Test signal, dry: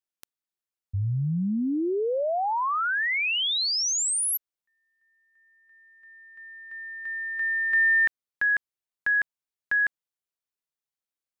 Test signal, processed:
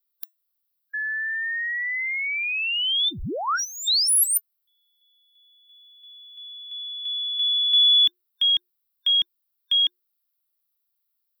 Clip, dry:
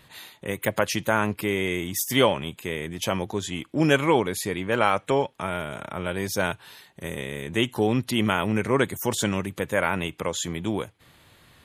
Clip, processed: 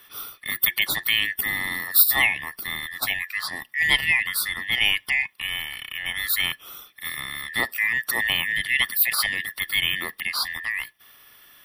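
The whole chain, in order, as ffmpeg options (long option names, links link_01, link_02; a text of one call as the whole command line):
ffmpeg -i in.wav -af "afftfilt=real='real(if(lt(b,920),b+92*(1-2*mod(floor(b/92),2)),b),0)':imag='imag(if(lt(b,920),b+92*(1-2*mod(floor(b/92),2)),b),0)':win_size=2048:overlap=0.75,equalizer=frequency=600:width=0.51:gain=7.5,crystalizer=i=7.5:c=0,afreqshift=-360,aexciter=amount=1.4:drive=2.5:freq=3500,superequalizer=10b=2:15b=0.355:16b=0.501,volume=-12dB" out.wav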